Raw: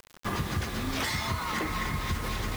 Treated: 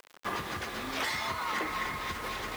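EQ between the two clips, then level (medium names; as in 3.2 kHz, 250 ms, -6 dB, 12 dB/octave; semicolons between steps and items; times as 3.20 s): tone controls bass -15 dB, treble -5 dB; 0.0 dB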